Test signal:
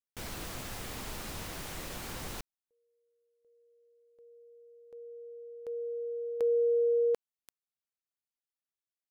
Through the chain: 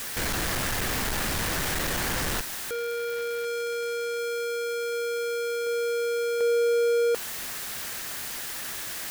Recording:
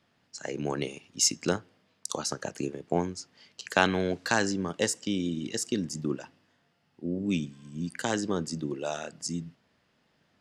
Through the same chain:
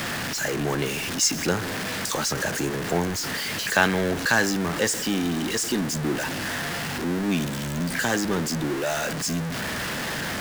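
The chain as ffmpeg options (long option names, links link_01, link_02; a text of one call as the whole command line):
ffmpeg -i in.wav -af "aeval=exprs='val(0)+0.5*0.0596*sgn(val(0))':channel_layout=same,equalizer=frequency=1700:width_type=o:width=0.5:gain=6" out.wav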